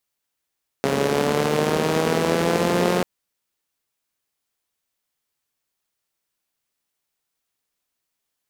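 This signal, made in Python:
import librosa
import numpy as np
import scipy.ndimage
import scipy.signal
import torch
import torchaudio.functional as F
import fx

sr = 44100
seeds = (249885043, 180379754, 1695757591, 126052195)

y = fx.engine_four_rev(sr, seeds[0], length_s=2.19, rpm=4100, resonances_hz=(230.0, 410.0), end_rpm=5400)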